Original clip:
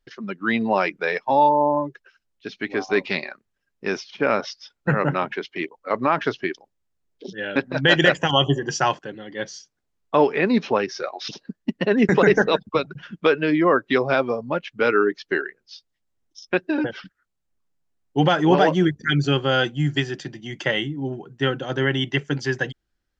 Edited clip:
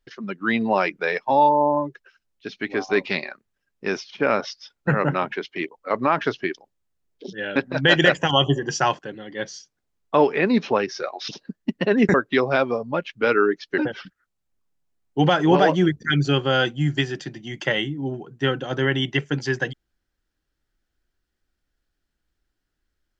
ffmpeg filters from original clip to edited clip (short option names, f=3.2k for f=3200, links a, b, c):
-filter_complex "[0:a]asplit=3[a][b][c];[a]atrim=end=12.142[d];[b]atrim=start=13.718:end=15.362[e];[c]atrim=start=16.768[f];[d][e]acrossfade=d=0.004:c1=hsin:c2=hsin[g];[g][f]acrossfade=d=0.004:c1=hsin:c2=hsin"